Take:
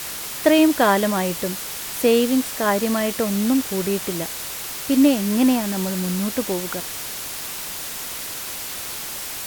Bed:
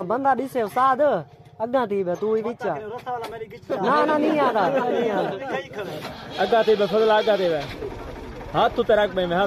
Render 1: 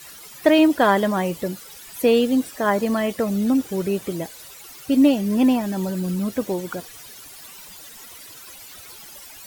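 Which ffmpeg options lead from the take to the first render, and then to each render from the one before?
-af "afftdn=nr=15:nf=-31"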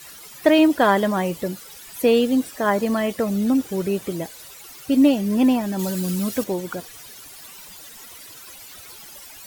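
-filter_complex "[0:a]asettb=1/sr,asplit=3[a][b][c];[a]atrim=end=5.794[d];[b]atrim=start=5.79:end=6.44,asetpts=PTS-STARTPTS,afade=t=in:d=0.004:c=qsin,afade=t=out:st=0.646:d=0.004:c=qsin,highshelf=f=2.4k:g=8.5[e];[c]atrim=start=6.436[f];[d][e]acrossfade=d=0.004:c1=hsin:c2=qsin[g];[g][f]acrossfade=d=0.004:c1=qsin:c2=hsin"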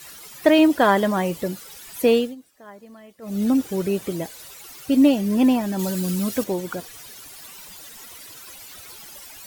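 -filter_complex "[0:a]asplit=3[a][b][c];[a]atrim=end=2.35,asetpts=PTS-STARTPTS,afade=t=out:st=2.13:d=0.22:silence=0.0707946[d];[b]atrim=start=2.35:end=3.21,asetpts=PTS-STARTPTS,volume=-23dB[e];[c]atrim=start=3.21,asetpts=PTS-STARTPTS,afade=t=in:d=0.22:silence=0.0707946[f];[d][e][f]concat=n=3:v=0:a=1"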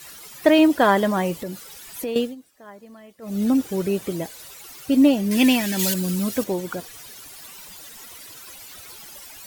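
-filter_complex "[0:a]asettb=1/sr,asplit=3[a][b][c];[a]atrim=end=1.364[d];[b]atrim=start=1.36:end=2.16,asetpts=PTS-STARTPTS,afade=t=in:d=0.004:c=qsin,afade=t=out:st=0.796:d=0.004:c=qsin,acompressor=threshold=-28dB:ratio=3:attack=3.2:release=140:knee=1:detection=peak[e];[c]atrim=start=2.156[f];[d][e]acrossfade=d=0.004:c1=hsin:c2=qsin[g];[g][f]acrossfade=d=0.004:c1=qsin:c2=hsin,asettb=1/sr,asplit=3[h][i][j];[h]atrim=end=5.314[k];[i]atrim=start=5.31:end=5.94,asetpts=PTS-STARTPTS,afade=t=in:d=0.004:c=qsin,afade=t=out:st=0.626:d=0.004:c=qsin,highshelf=f=1.5k:t=q:w=1.5:g=10[l];[j]atrim=start=5.936[m];[k][l]acrossfade=d=0.004:c1=hsin:c2=qsin[n];[n][m]acrossfade=d=0.004:c1=qsin:c2=hsin"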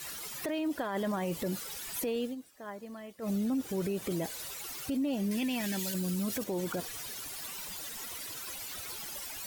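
-af "acompressor=threshold=-26dB:ratio=5,alimiter=level_in=1.5dB:limit=-24dB:level=0:latency=1:release=19,volume=-1.5dB"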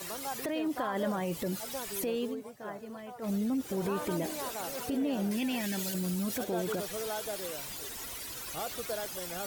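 -filter_complex "[1:a]volume=-19.5dB[a];[0:a][a]amix=inputs=2:normalize=0"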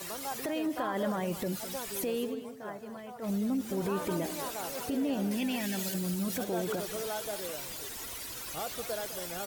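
-af "aecho=1:1:206:0.224"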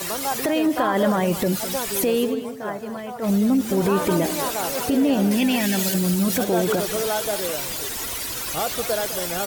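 -af "volume=12dB"

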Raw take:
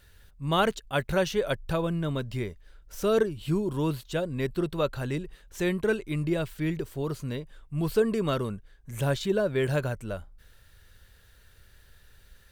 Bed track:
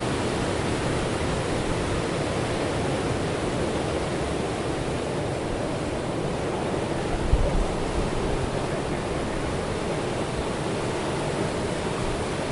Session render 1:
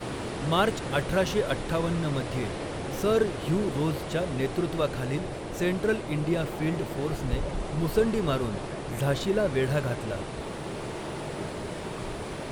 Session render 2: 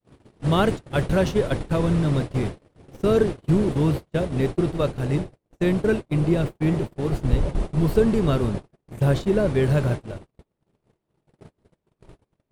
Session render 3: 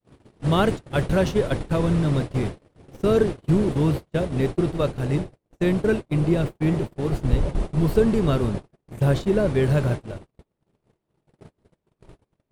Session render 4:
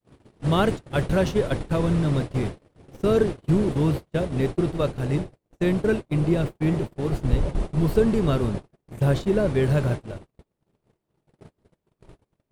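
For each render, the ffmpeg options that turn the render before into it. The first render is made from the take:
-filter_complex "[1:a]volume=-8dB[a];[0:a][a]amix=inputs=2:normalize=0"
-af "lowshelf=f=400:g=9.5,agate=range=-50dB:threshold=-23dB:ratio=16:detection=peak"
-af anull
-af "volume=-1dB"

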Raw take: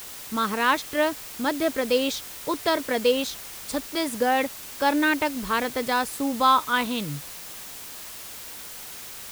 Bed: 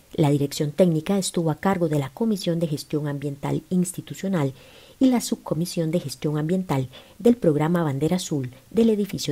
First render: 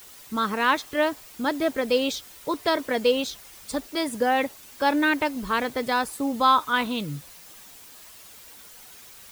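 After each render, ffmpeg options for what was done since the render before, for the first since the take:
-af "afftdn=nr=9:nf=-40"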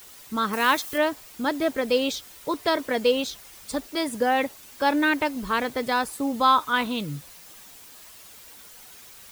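-filter_complex "[0:a]asettb=1/sr,asplit=3[a][b][c];[a]atrim=end=0.534[d];[b]atrim=start=0.53:end=0.98,asetpts=PTS-STARTPTS,afade=t=in:d=0.004:c=qsin,afade=t=out:st=0.446:d=0.004:c=qsin,highshelf=f=6.1k:g=11.5[e];[c]atrim=start=0.976[f];[d][e]acrossfade=d=0.004:c1=hsin:c2=qsin[g];[g][f]acrossfade=d=0.004:c1=qsin:c2=hsin"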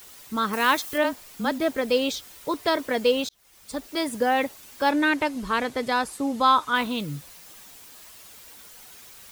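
-filter_complex "[0:a]asplit=3[a][b][c];[a]afade=t=out:st=1.03:d=0.02[d];[b]afreqshift=-30,afade=t=in:st=1.03:d=0.02,afade=t=out:st=1.58:d=0.02[e];[c]afade=t=in:st=1.58:d=0.02[f];[d][e][f]amix=inputs=3:normalize=0,asettb=1/sr,asplit=3[g][h][i];[g]atrim=end=4.904[j];[h]atrim=start=4.9:end=6.75,asetpts=PTS-STARTPTS,afade=t=in:d=0.004:c=qsin,afade=t=out:st=1.846:d=0.004:c=qsin,lowpass=11k[k];[i]atrim=start=6.746[l];[j][k]acrossfade=d=0.004:c1=hsin:c2=qsin[m];[m][l]acrossfade=d=0.004:c1=qsin:c2=hsin,asplit=2[n][o];[n]atrim=end=3.29,asetpts=PTS-STARTPTS,afade=t=out:st=3.286:d=0.004:c=hsin[p];[o]atrim=start=3.29,asetpts=PTS-STARTPTS,afade=t=in:d=0.68[q];[p][q]concat=n=2:v=0:a=1"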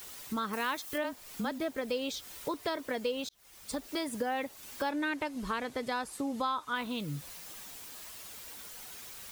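-af "acompressor=threshold=-34dB:ratio=3"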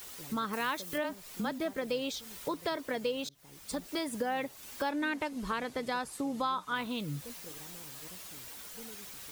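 -filter_complex "[1:a]volume=-32.5dB[a];[0:a][a]amix=inputs=2:normalize=0"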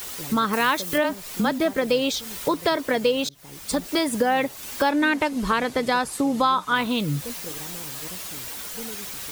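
-af "volume=12dB"

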